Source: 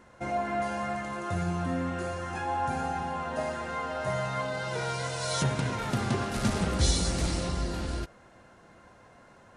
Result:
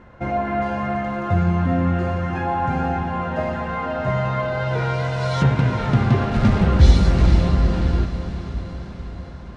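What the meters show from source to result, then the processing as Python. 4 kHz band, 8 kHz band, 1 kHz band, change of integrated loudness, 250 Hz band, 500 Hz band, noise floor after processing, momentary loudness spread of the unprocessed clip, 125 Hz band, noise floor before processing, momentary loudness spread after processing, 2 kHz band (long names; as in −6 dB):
+1.0 dB, can't be measured, +7.5 dB, +10.5 dB, +11.0 dB, +8.0 dB, −36 dBFS, 6 LU, +14.0 dB, −56 dBFS, 12 LU, +6.5 dB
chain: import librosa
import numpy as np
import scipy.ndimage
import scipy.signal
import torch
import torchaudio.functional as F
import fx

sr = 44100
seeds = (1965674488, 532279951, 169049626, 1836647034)

y = scipy.signal.sosfilt(scipy.signal.butter(2, 3000.0, 'lowpass', fs=sr, output='sos'), x)
y = fx.low_shelf(y, sr, hz=160.0, db=10.0)
y = fx.echo_diffused(y, sr, ms=472, feedback_pct=62, wet_db=-10.5)
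y = y * 10.0 ** (6.5 / 20.0)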